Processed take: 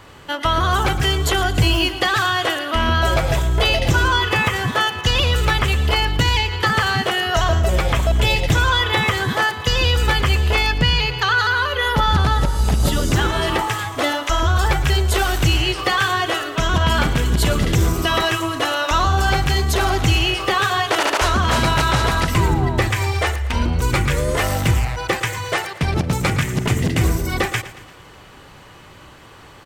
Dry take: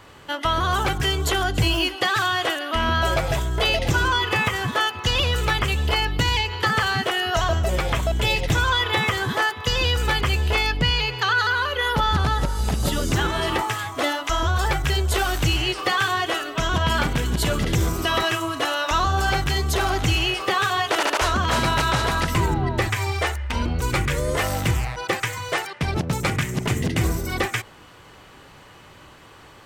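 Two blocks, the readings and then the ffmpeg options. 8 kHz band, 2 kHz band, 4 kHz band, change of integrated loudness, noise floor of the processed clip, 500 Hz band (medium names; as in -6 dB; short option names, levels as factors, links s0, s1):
+3.0 dB, +3.0 dB, +3.0 dB, +4.0 dB, -43 dBFS, +3.5 dB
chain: -af "lowshelf=f=140:g=3,aecho=1:1:114|228|342|456|570:0.178|0.0925|0.0481|0.025|0.013,volume=1.41"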